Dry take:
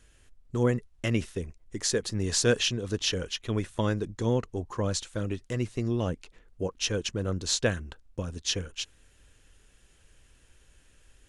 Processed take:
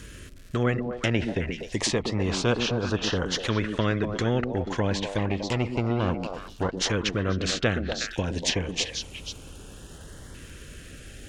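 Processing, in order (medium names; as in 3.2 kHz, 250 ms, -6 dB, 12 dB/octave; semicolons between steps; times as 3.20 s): 5.18–6.77 s: comb filter that takes the minimum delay 0.4 ms; treble shelf 3.4 kHz -5.5 dB; crackle 320 per s -59 dBFS; LFO notch saw up 0.29 Hz 740–2600 Hz; on a send: repeats whose band climbs or falls 121 ms, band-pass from 250 Hz, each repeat 1.4 oct, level -6 dB; on the sum: low-pass that closes with the level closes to 2 kHz, closed at -27 dBFS; high-pass 89 Hz 6 dB/octave; bass shelf 200 Hz +9.5 dB; spectrum-flattening compressor 2:1; trim +1 dB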